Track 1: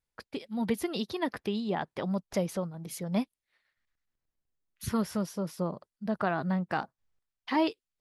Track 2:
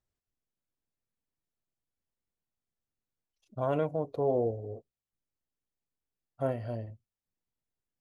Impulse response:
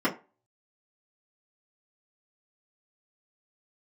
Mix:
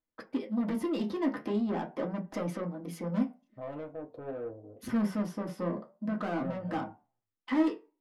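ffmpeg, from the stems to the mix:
-filter_complex "[0:a]agate=range=-8dB:threshold=-54dB:ratio=16:detection=peak,equalizer=f=4k:t=o:w=0.2:g=-4,asoftclip=type=tanh:threshold=-34dB,volume=2dB,asplit=2[a][b];[b]volume=-8.5dB[c];[1:a]asoftclip=type=tanh:threshold=-27.5dB,volume=-5.5dB,asplit=2[d][e];[e]volume=-17.5dB[f];[2:a]atrim=start_sample=2205[g];[c][f]amix=inputs=2:normalize=0[h];[h][g]afir=irnorm=-1:irlink=0[i];[a][d][i]amix=inputs=3:normalize=0,highshelf=f=3.9k:g=-9,flanger=delay=6.2:depth=8.5:regen=63:speed=0.44:shape=sinusoidal"

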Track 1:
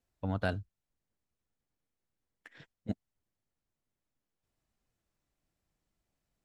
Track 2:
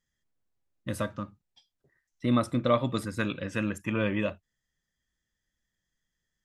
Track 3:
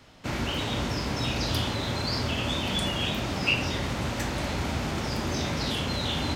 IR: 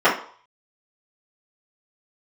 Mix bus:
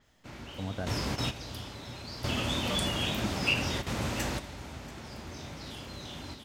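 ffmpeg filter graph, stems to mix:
-filter_complex "[0:a]equalizer=f=4.8k:w=0.34:g=-13,adelay=350,volume=-2.5dB[a];[1:a]acompressor=mode=upward:threshold=-32dB:ratio=2.5,volume=-16dB,asplit=2[b][c];[2:a]volume=-3dB,asplit=2[d][e];[e]volume=-17dB[f];[c]apad=whole_len=280418[g];[d][g]sidechaingate=range=-12dB:threshold=-55dB:ratio=16:detection=peak[h];[f]aecho=0:1:685:1[i];[a][b][h][i]amix=inputs=4:normalize=0,adynamicequalizer=threshold=0.00282:dfrequency=5800:dqfactor=0.7:tfrequency=5800:tqfactor=0.7:attack=5:release=100:ratio=0.375:range=2.5:mode=boostabove:tftype=highshelf"

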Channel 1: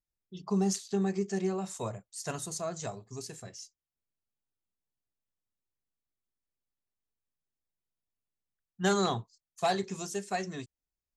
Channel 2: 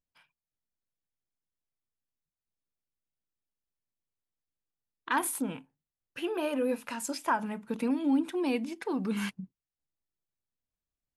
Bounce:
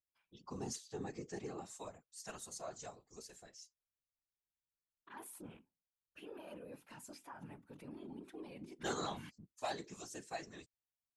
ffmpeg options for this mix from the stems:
-filter_complex "[0:a]highpass=f=380:p=1,volume=-4dB[a];[1:a]alimiter=level_in=3.5dB:limit=-24dB:level=0:latency=1:release=11,volume=-3.5dB,volume=-10.5dB[b];[a][b]amix=inputs=2:normalize=0,afftfilt=real='hypot(re,im)*cos(2*PI*random(0))':imag='hypot(re,im)*sin(2*PI*random(1))':win_size=512:overlap=0.75"

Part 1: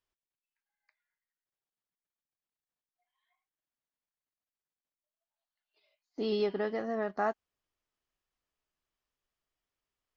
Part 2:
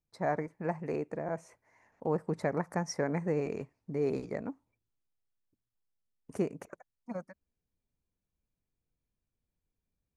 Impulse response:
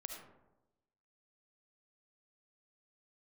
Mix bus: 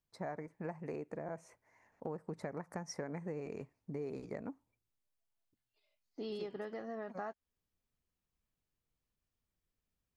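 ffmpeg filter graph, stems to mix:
-filter_complex "[0:a]volume=-7dB,asplit=2[a][b];[1:a]volume=-3dB[c];[b]apad=whole_len=448358[d];[c][d]sidechaincompress=threshold=-46dB:ratio=8:attack=16:release=265[e];[a][e]amix=inputs=2:normalize=0,acompressor=threshold=-38dB:ratio=6"

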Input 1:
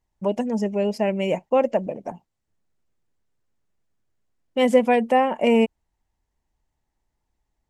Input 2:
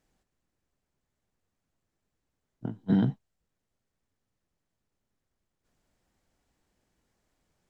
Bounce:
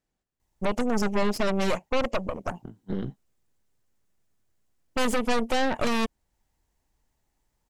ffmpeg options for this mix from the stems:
-filter_complex "[0:a]highshelf=f=5.6k:g=8,alimiter=limit=-15dB:level=0:latency=1:release=363,adelay=400,volume=-5.5dB[a];[1:a]volume=-14.5dB[b];[a][b]amix=inputs=2:normalize=0,aeval=exprs='0.1*(cos(1*acos(clip(val(0)/0.1,-1,1)))-cos(1*PI/2))+0.0224*(cos(5*acos(clip(val(0)/0.1,-1,1)))-cos(5*PI/2))+0.0447*(cos(6*acos(clip(val(0)/0.1,-1,1)))-cos(6*PI/2))':c=same"

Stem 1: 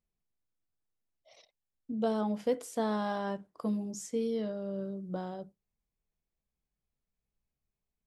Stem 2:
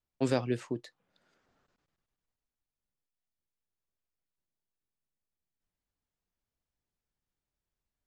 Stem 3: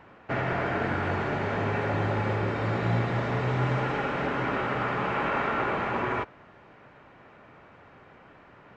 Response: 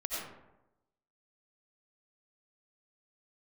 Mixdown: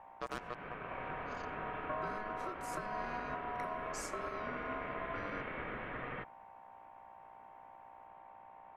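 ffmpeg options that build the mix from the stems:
-filter_complex "[0:a]acompressor=threshold=-39dB:ratio=6,volume=2dB,asplit=2[a][b];[b]volume=-21.5dB[c];[1:a]acrusher=bits=3:mix=0:aa=0.5,volume=-1.5dB,asplit=2[d][e];[e]volume=-24dB[f];[2:a]lowpass=1.5k,aeval=exprs='val(0)+0.00891*(sin(2*PI*60*n/s)+sin(2*PI*2*60*n/s)/2+sin(2*PI*3*60*n/s)/3+sin(2*PI*4*60*n/s)/4+sin(2*PI*5*60*n/s)/5)':c=same,volume=-10.5dB[g];[3:a]atrim=start_sample=2205[h];[c][f]amix=inputs=2:normalize=0[i];[i][h]afir=irnorm=-1:irlink=0[j];[a][d][g][j]amix=inputs=4:normalize=0,aeval=exprs='val(0)*sin(2*PI*850*n/s)':c=same,alimiter=level_in=4dB:limit=-24dB:level=0:latency=1:release=295,volume=-4dB"

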